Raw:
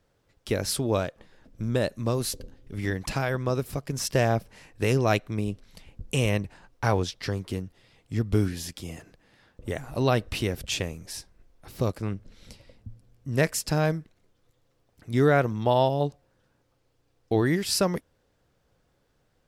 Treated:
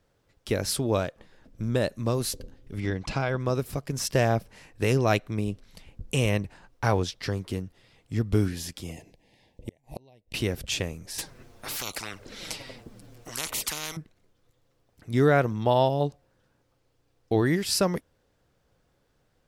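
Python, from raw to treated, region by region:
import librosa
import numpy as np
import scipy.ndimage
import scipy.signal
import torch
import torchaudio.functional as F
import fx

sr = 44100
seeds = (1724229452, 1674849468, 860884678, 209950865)

y = fx.chain(x, sr, fx.lowpass(hz=5400.0, slope=12),
    fx.notch(hz=1800.0, q=9.4), at=(2.8, 3.4))
y = fx.chain(y, sr, fx.cheby1_bandstop(low_hz=880.0, high_hz=2100.0, order=2),
    fx.gate_flip(shuts_db=-22.0, range_db=-33), at=(8.92, 10.34))
y = fx.chain(y, sr, fx.env_flanger(rest_ms=9.9, full_db=-23.5),
    fx.spectral_comp(ratio=10.0), at=(11.18, 13.97))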